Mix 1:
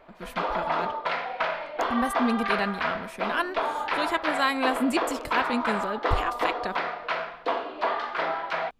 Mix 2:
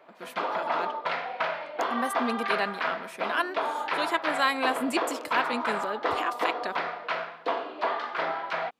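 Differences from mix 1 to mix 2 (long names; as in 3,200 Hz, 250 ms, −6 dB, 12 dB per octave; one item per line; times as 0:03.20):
speech: add high-pass filter 320 Hz 12 dB per octave
reverb: off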